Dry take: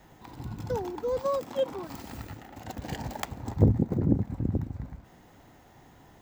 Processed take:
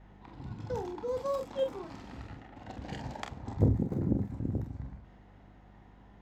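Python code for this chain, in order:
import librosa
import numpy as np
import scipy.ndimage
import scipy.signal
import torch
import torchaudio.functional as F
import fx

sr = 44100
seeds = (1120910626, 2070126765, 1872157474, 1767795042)

y = fx.add_hum(x, sr, base_hz=50, snr_db=20)
y = fx.env_lowpass(y, sr, base_hz=2700.0, full_db=-23.5)
y = fx.room_early_taps(y, sr, ms=(30, 45), db=(-9.5, -7.5))
y = y * librosa.db_to_amplitude(-5.5)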